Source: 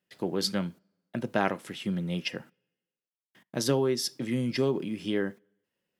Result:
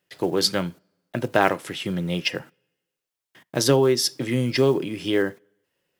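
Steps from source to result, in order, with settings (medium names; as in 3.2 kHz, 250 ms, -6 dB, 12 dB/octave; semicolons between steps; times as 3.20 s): block-companded coder 7-bit; peaking EQ 210 Hz -12 dB 0.34 oct; trim +8.5 dB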